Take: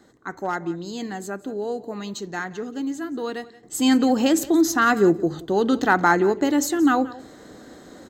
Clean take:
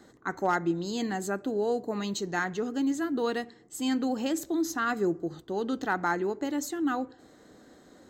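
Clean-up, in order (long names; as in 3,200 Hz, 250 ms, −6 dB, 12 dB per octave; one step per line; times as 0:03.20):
echo removal 176 ms −19 dB
level correction −10.5 dB, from 0:03.63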